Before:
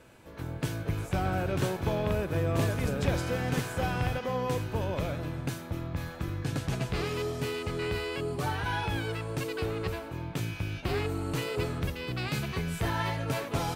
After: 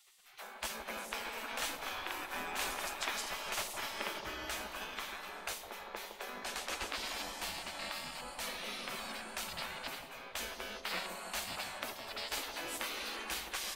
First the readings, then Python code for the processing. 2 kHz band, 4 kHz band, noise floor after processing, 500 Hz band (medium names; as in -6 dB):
-3.0 dB, +0.5 dB, -51 dBFS, -14.0 dB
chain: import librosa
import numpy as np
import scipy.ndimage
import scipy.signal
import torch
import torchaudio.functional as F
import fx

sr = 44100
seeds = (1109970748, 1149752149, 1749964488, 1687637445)

y = fx.spec_gate(x, sr, threshold_db=-20, keep='weak')
y = fx.echo_bbd(y, sr, ms=161, stages=1024, feedback_pct=64, wet_db=-5.5)
y = y * librosa.db_to_amplitude(2.5)